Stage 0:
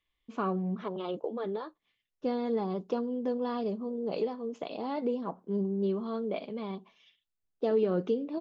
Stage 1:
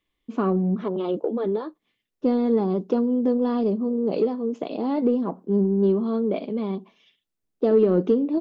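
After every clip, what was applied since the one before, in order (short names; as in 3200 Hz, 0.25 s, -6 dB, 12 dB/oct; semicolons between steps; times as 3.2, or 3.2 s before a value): bell 280 Hz +10.5 dB 1.9 oct; in parallel at -10 dB: soft clip -19.5 dBFS, distortion -14 dB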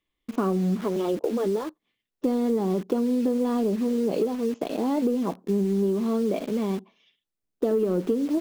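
in parallel at -3 dB: requantised 6-bit, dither none; on the sum: compressor, threshold -17 dBFS, peak gain reduction 8 dB; gain -3.5 dB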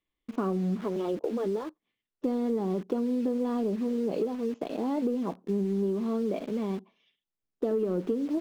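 high shelf 6000 Hz -9.5 dB; gain -4.5 dB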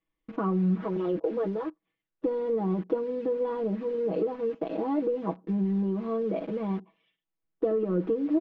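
LPF 2300 Hz 12 dB/oct; comb 6.2 ms, depth 83%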